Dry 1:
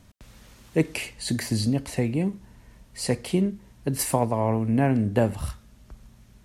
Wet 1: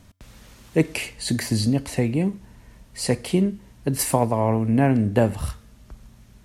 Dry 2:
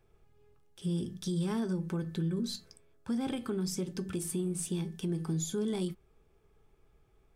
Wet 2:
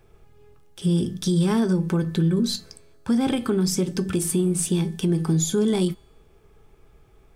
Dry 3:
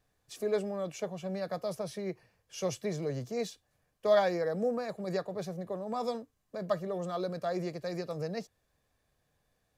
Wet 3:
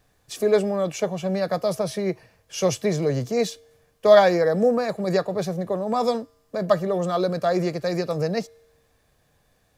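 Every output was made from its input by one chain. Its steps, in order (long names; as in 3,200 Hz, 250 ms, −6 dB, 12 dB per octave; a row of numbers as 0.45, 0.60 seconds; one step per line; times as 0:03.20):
tuned comb filter 92 Hz, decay 1.1 s, harmonics odd, mix 30%
loudness normalisation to −23 LKFS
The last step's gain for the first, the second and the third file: +6.0, +14.5, +14.5 decibels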